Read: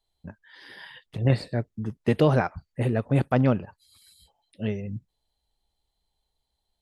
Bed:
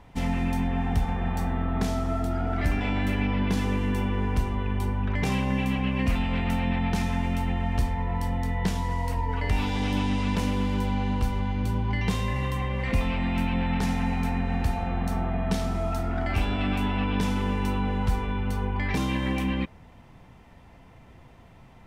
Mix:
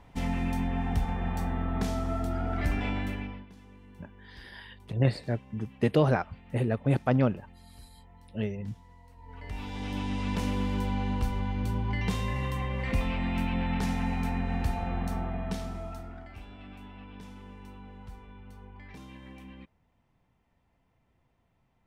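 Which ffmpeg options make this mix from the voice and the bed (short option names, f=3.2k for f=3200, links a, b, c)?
-filter_complex "[0:a]adelay=3750,volume=-3dB[a];[1:a]volume=19.5dB,afade=t=out:st=2.86:d=0.6:silence=0.0707946,afade=t=in:st=9.17:d=1.33:silence=0.0707946,afade=t=out:st=14.95:d=1.36:silence=0.141254[b];[a][b]amix=inputs=2:normalize=0"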